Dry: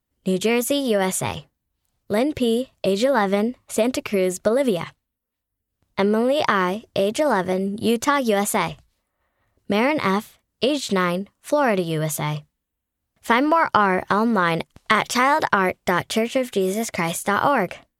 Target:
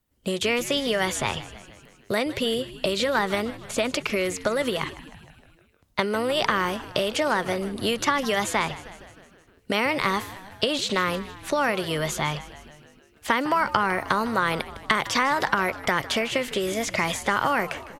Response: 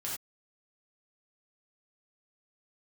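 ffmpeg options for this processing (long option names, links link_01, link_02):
-filter_complex "[0:a]acrossover=split=450|1100|6300[link_01][link_02][link_03][link_04];[link_01]acompressor=threshold=-36dB:ratio=4[link_05];[link_02]acompressor=threshold=-34dB:ratio=4[link_06];[link_03]acompressor=threshold=-27dB:ratio=4[link_07];[link_04]acompressor=threshold=-48dB:ratio=4[link_08];[link_05][link_06][link_07][link_08]amix=inputs=4:normalize=0,asplit=7[link_09][link_10][link_11][link_12][link_13][link_14][link_15];[link_10]adelay=155,afreqshift=-100,volume=-16dB[link_16];[link_11]adelay=310,afreqshift=-200,volume=-20dB[link_17];[link_12]adelay=465,afreqshift=-300,volume=-24dB[link_18];[link_13]adelay=620,afreqshift=-400,volume=-28dB[link_19];[link_14]adelay=775,afreqshift=-500,volume=-32.1dB[link_20];[link_15]adelay=930,afreqshift=-600,volume=-36.1dB[link_21];[link_09][link_16][link_17][link_18][link_19][link_20][link_21]amix=inputs=7:normalize=0,volume=4dB"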